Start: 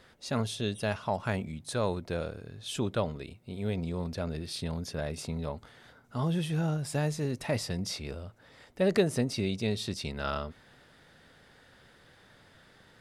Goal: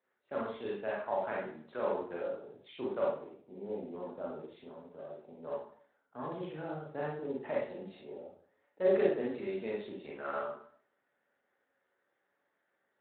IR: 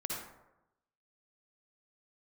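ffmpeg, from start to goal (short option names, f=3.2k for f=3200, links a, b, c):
-filter_complex "[0:a]afwtdn=0.00794,acrossover=split=280 2400:gain=0.0631 1 0.126[a][b][c];[a][b][c]amix=inputs=3:normalize=0,asettb=1/sr,asplit=3[d][e][f];[d]atrim=end=4.384[g];[e]atrim=start=4.38:end=5.43,asetpts=PTS-STARTPTS,afade=t=in:d=0.004:c=qsin,afade=t=out:st=1.046:d=0.004:c=qsin,acompressor=threshold=-54dB:ratio=1.5[h];[f]atrim=start=5.426[i];[g][h]acrossfade=d=0.004:c1=hsin:c2=qsin[j];[j][i]acrossfade=d=0.004:c1=qsin:c2=hsin,flanger=delay=4.4:depth=3.6:regen=-75:speed=0.54:shape=triangular[k];[1:a]atrim=start_sample=2205,asetrate=74970,aresample=44100[l];[k][l]afir=irnorm=-1:irlink=0,volume=5dB" -ar 8000 -c:a libspeex -b:a 18k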